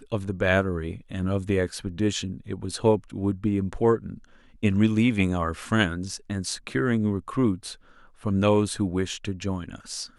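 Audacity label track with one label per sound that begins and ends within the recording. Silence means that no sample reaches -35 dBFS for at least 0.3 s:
4.630000	7.730000	sound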